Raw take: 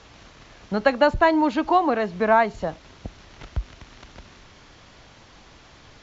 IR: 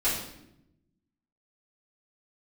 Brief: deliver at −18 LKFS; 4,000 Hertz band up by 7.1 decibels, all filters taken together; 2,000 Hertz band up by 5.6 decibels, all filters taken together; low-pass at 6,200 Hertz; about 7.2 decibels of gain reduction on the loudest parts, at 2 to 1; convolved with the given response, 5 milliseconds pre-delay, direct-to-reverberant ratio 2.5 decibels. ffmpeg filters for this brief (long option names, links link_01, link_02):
-filter_complex "[0:a]lowpass=6200,equalizer=frequency=2000:width_type=o:gain=6,equalizer=frequency=4000:width_type=o:gain=7.5,acompressor=threshold=-24dB:ratio=2,asplit=2[link_01][link_02];[1:a]atrim=start_sample=2205,adelay=5[link_03];[link_02][link_03]afir=irnorm=-1:irlink=0,volume=-13dB[link_04];[link_01][link_04]amix=inputs=2:normalize=0,volume=6.5dB"